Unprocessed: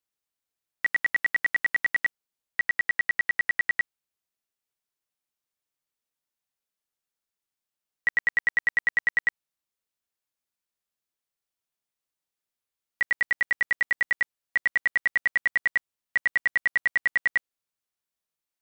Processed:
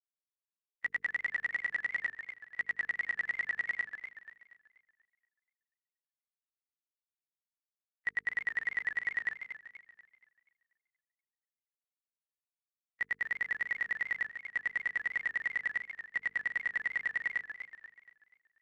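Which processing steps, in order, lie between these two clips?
expander on every frequency bin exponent 2; hum notches 50/100/150/200/250/300/350/400/450 Hz; modulated delay 240 ms, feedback 42%, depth 182 cents, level -9.5 dB; trim -8 dB

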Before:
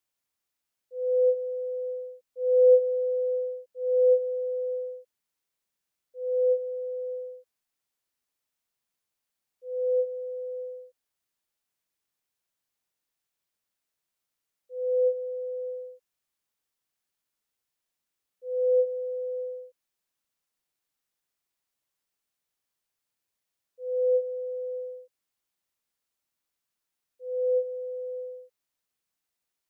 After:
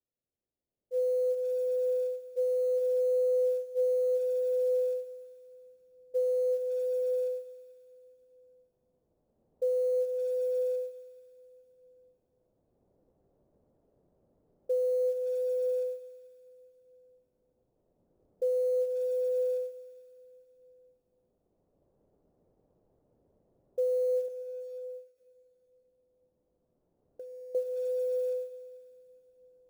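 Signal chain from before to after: recorder AGC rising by 9.3 dB/s; Chebyshev low-pass 550 Hz, order 3; dynamic bell 470 Hz, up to -5 dB, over -35 dBFS, Q 7.8; peak limiter -24 dBFS, peak gain reduction 10.5 dB; 24.28–27.55 s: compression 5:1, threshold -46 dBFS, peak gain reduction 17 dB; short-mantissa float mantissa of 4-bit; plate-style reverb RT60 3.4 s, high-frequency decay 0.95×, DRR 9.5 dB; endings held to a fixed fall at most 160 dB/s

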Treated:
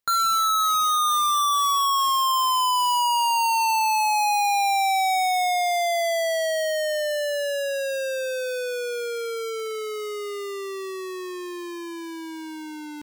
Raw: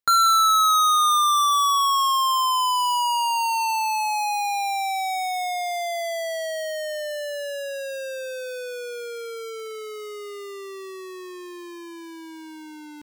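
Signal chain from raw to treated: overload inside the chain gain 25.5 dB; trim +4.5 dB

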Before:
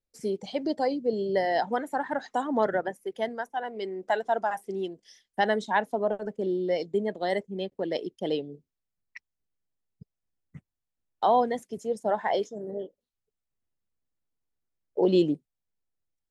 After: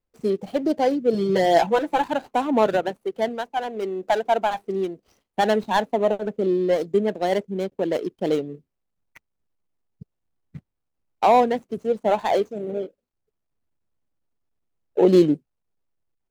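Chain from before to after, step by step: median filter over 25 samples; 1.14–2.04 s: comb 6 ms, depth 90%; trim +7 dB

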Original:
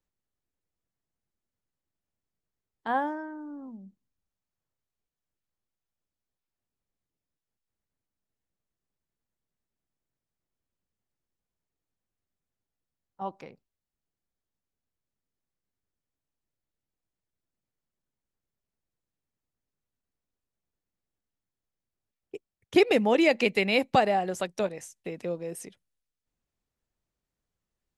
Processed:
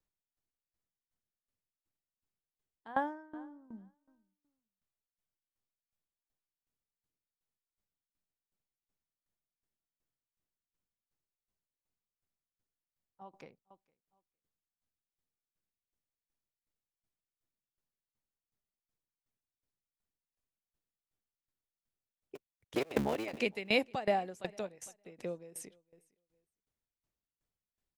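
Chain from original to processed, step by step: 22.35–23.41 s: cycle switcher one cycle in 3, muted; feedback delay 458 ms, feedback 20%, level -24 dB; sawtooth tremolo in dB decaying 2.7 Hz, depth 20 dB; trim -1.5 dB

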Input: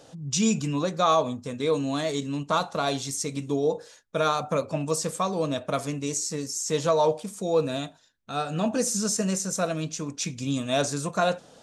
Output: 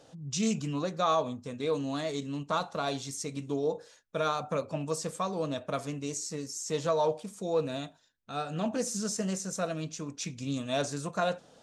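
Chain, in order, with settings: treble shelf 8.6 kHz -5 dB; loudspeaker Doppler distortion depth 0.12 ms; trim -5.5 dB

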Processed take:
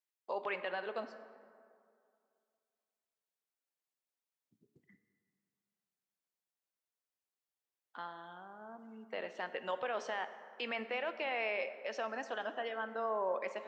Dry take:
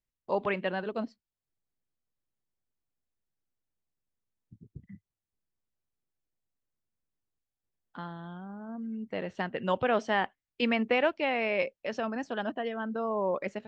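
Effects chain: high-pass 530 Hz 12 dB/octave; peak limiter -25.5 dBFS, peak gain reduction 11 dB; plate-style reverb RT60 2.3 s, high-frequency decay 0.5×, DRR 10 dB; trim -2 dB

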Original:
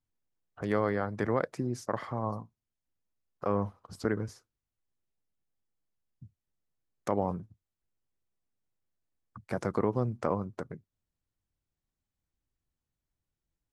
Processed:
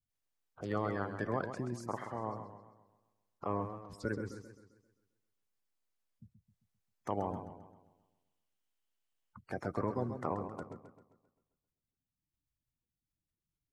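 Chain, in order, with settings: coarse spectral quantiser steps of 30 dB; 7.10–9.37 s: peaking EQ 3 kHz +9 dB 0.25 oct; modulated delay 132 ms, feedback 47%, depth 116 cents, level -9 dB; trim -6 dB

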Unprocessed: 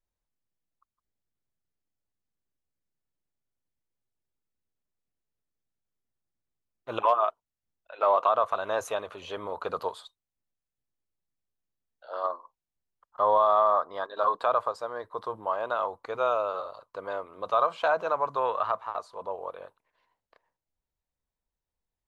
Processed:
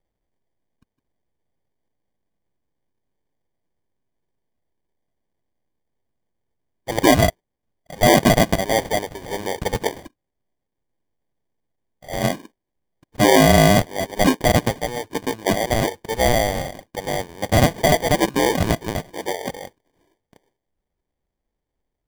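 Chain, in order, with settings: sample-and-hold 33×; trim +9 dB

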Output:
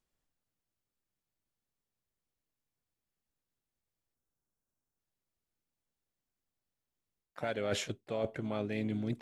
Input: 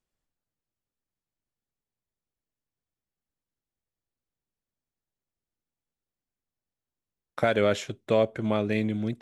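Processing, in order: reverse; compression 12:1, threshold -31 dBFS, peak gain reduction 14 dB; reverse; spectral selection erased 4.15–4.99 s, 1.7–5.2 kHz; harmony voices +4 st -14 dB

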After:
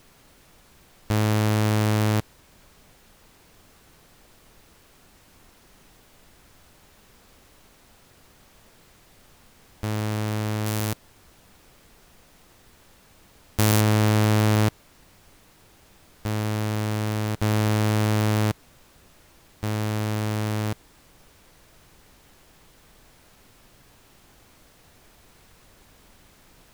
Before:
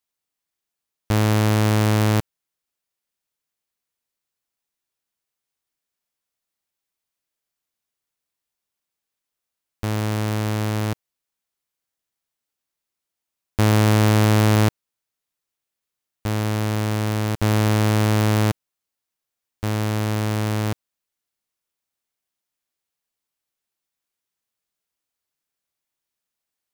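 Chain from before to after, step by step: 10.66–13.81 s: treble shelf 4.9 kHz +12 dB; added noise pink -51 dBFS; trim -3.5 dB

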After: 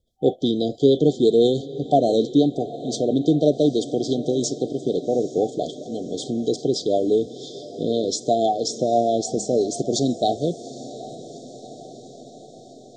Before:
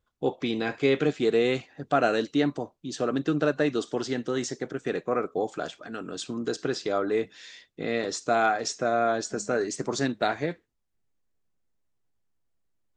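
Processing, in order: rotary cabinet horn 6 Hz; FFT band-reject 770–3100 Hz; echo that smears into a reverb 803 ms, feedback 64%, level -16 dB; trim +8.5 dB

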